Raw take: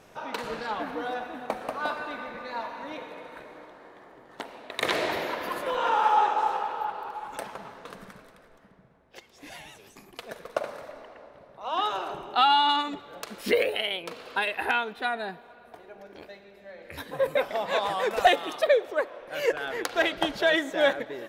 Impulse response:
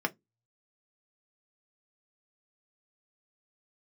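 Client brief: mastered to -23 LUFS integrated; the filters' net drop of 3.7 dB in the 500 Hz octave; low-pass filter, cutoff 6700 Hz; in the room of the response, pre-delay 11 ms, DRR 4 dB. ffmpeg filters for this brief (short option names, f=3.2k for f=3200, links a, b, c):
-filter_complex "[0:a]lowpass=6.7k,equalizer=f=500:t=o:g=-4.5,asplit=2[a][b];[1:a]atrim=start_sample=2205,adelay=11[c];[b][c]afir=irnorm=-1:irlink=0,volume=-11.5dB[d];[a][d]amix=inputs=2:normalize=0,volume=4.5dB"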